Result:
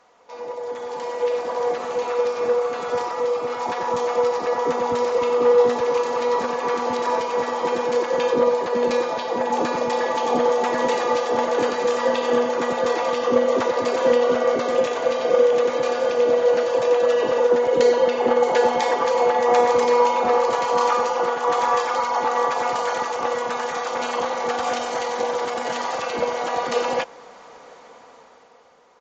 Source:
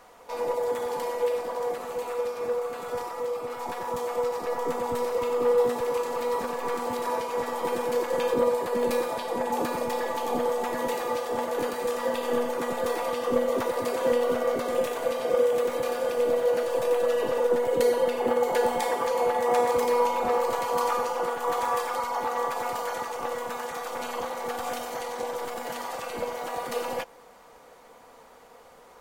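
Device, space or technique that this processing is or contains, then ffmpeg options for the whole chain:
Bluetooth headset: -af "highpass=f=160:p=1,dynaudnorm=f=280:g=9:m=4.47,aresample=16000,aresample=44100,volume=0.631" -ar 16000 -c:a sbc -b:a 64k

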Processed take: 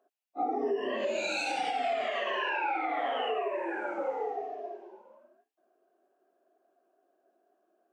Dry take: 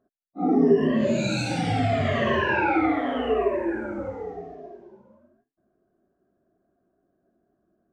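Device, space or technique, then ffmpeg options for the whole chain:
laptop speaker: -filter_complex "[0:a]asettb=1/sr,asplit=3[s0][s1][s2];[s0]atrim=end=2.104[s3];[s1]atrim=start=2.1:end=3.98,asetpts=PTS-STARTPTS,afade=t=in:d=0.004:c=qsin,afade=t=out:st=1.876:d=0.004:c=qsin,lowshelf=f=340:g=-8[s4];[s2]atrim=start=3.976[s5];[s3][s4]acrossfade=d=0.004:c1=hsin:c2=qsin[s6];[s6][s5]acrossfade=d=0.004:c1=qsin:c2=hsin,highpass=f=370:w=0.5412,highpass=f=370:w=1.3066,equalizer=f=800:t=o:w=0.5:g=7.5,equalizer=f=2700:t=o:w=0.48:g=7,alimiter=limit=0.075:level=0:latency=1:release=394"

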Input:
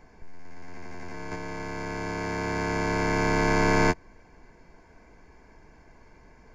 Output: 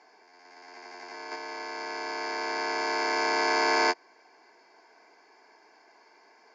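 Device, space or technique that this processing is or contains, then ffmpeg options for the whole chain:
phone speaker on a table: -filter_complex "[0:a]highpass=f=380:w=0.5412,highpass=f=380:w=1.3066,equalizer=f=530:t=q:w=4:g=-8,equalizer=f=770:t=q:w=4:g=4,equalizer=f=4800:t=q:w=4:g=10,lowpass=f=7000:w=0.5412,lowpass=f=7000:w=1.3066,asettb=1/sr,asplit=3[s0][s1][s2];[s0]atrim=end=1.184[s3];[s1]atrim=start=1.18:end=2.78,asetpts=PTS-STARTPTS,afade=t=in:d=0.004:c=qsin,afade=t=out:st=1.596:d=0.004:c=qsin,lowpass=8700[s4];[s2]atrim=start=2.776[s5];[s3][s4]acrossfade=d=0.004:c1=hsin:c2=qsin[s6];[s6][s5]acrossfade=d=0.004:c1=qsin:c2=hsin"

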